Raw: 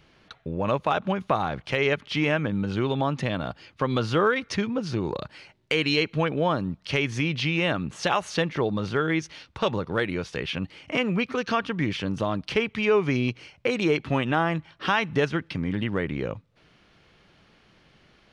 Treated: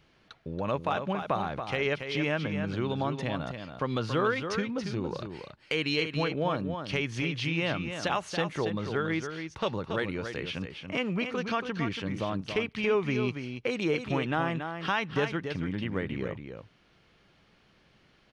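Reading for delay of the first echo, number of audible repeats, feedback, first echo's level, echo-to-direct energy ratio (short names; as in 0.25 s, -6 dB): 0.28 s, 1, no steady repeat, -7.5 dB, -7.5 dB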